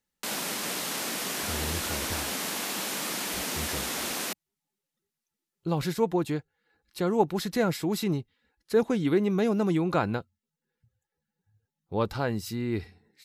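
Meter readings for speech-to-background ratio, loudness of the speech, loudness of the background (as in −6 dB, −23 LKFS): 1.5 dB, −29.0 LKFS, −30.5 LKFS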